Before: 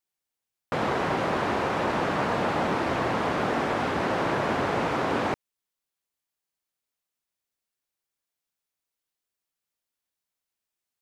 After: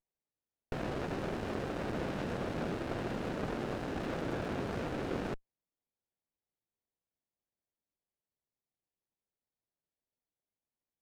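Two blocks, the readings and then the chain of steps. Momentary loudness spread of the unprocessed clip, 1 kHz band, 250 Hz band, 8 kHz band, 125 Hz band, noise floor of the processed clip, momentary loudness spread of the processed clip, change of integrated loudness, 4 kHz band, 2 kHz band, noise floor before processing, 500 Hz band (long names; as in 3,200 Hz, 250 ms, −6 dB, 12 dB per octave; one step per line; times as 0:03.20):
2 LU, −16.0 dB, −7.5 dB, −10.5 dB, −6.0 dB, below −85 dBFS, 2 LU, −11.0 dB, −12.0 dB, −13.5 dB, below −85 dBFS, −10.0 dB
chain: windowed peak hold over 33 samples
level −8 dB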